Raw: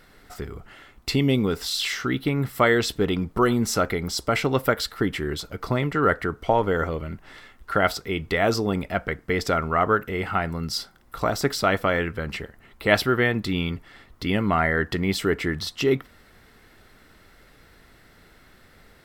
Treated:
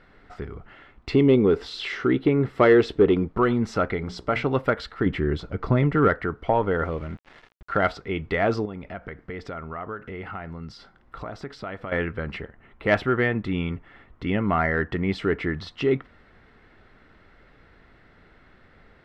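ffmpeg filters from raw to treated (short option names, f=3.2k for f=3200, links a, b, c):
-filter_complex "[0:a]asettb=1/sr,asplit=3[a][b][c];[a]atrim=end=1.134[d];[b]atrim=start=1.13:end=3.28,asetpts=PTS-STARTPTS,afade=t=in:d=0.004:c=qsin,afade=t=out:st=2.146:d=0.004:c=qsin,equalizer=f=390:w=1.5:g=9.5[e];[c]atrim=start=3.276[f];[d][e]acrossfade=d=0.004:c1=hsin:c2=qsin[g];[g][f]acrossfade=d=0.004:c1=qsin:c2=hsin,asettb=1/sr,asplit=3[h][i][j];[h]atrim=end=3.964[k];[i]atrim=start=3.96:end=4.45,asetpts=PTS-STARTPTS,afade=t=in:d=0.004:c=qsin,afade=t=out:st=0.486:d=0.004:c=qsin,bandreject=f=60:t=h:w=6,bandreject=f=120:t=h:w=6,bandreject=f=180:t=h:w=6,bandreject=f=240:t=h:w=6,bandreject=f=300:t=h:w=6,bandreject=f=360:t=h:w=6,bandreject=f=420:t=h:w=6,bandreject=f=480:t=h:w=6,bandreject=f=540:t=h:w=6,bandreject=f=600:t=h:w=6[l];[j]atrim=start=4.446[m];[k][l]acrossfade=d=0.004:c1=hsin:c2=qsin[n];[n][m]acrossfade=d=0.004:c1=qsin:c2=hsin,asettb=1/sr,asplit=3[o][p][q];[o]atrim=end=5.064[r];[p]atrim=start=5.06:end=6.08,asetpts=PTS-STARTPTS,afade=t=in:d=0.004:c=qsin,afade=t=out:st=1.016:d=0.004:c=qsin,lowshelf=f=450:g=7[s];[q]atrim=start=6.076[t];[r][s]acrossfade=d=0.004:c1=hsin:c2=qsin[u];[u][t]acrossfade=d=0.004:c1=qsin:c2=hsin,asettb=1/sr,asplit=3[v][w][x];[v]atrim=end=6.784[y];[w]atrim=start=6.78:end=7.9,asetpts=PTS-STARTPTS,afade=t=in:d=0.004:c=qsin,afade=t=out:st=1.116:d=0.004:c=qsin,aeval=exprs='val(0)*gte(abs(val(0)),0.00841)':c=same[z];[x]atrim=start=7.896[aa];[y][z]acrossfade=d=0.004:c1=hsin:c2=qsin[ab];[ab][aa]acrossfade=d=0.004:c1=qsin:c2=hsin,asettb=1/sr,asplit=3[ac][ad][ae];[ac]atrim=end=8.654[af];[ad]atrim=start=8.65:end=11.92,asetpts=PTS-STARTPTS,afade=t=in:d=0.004:c=qsin,afade=t=out:st=3.266:d=0.004:c=qsin,acompressor=threshold=-33dB:ratio=3:attack=3.2:release=140:knee=1:detection=peak[ag];[ae]atrim=start=11.916[ah];[af][ag]acrossfade=d=0.004:c1=hsin:c2=qsin[ai];[ai][ah]acrossfade=d=0.004:c1=qsin:c2=hsin,asettb=1/sr,asplit=3[aj][ak][al];[aj]atrim=end=12.444[am];[ak]atrim=start=12.44:end=15.12,asetpts=PTS-STARTPTS,afade=t=in:d=0.004:c=qsin,afade=t=out:st=2.676:d=0.004:c=qsin,equalizer=f=4.6k:t=o:w=0.6:g=-7.5[an];[al]atrim=start=15.116[ao];[am][an]acrossfade=d=0.004:c1=hsin:c2=qsin[ap];[ap][ao]acrossfade=d=0.004:c1=qsin:c2=hsin,lowpass=2.6k,acontrast=25,volume=-5.5dB"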